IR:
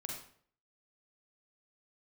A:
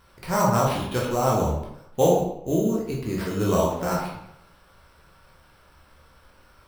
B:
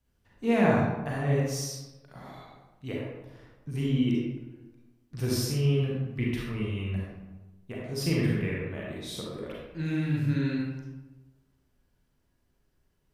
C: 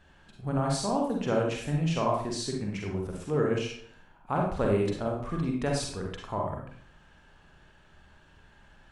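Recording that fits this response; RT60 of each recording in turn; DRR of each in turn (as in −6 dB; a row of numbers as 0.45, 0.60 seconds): C; 0.75, 1.1, 0.55 seconds; −3.5, −5.0, −1.0 decibels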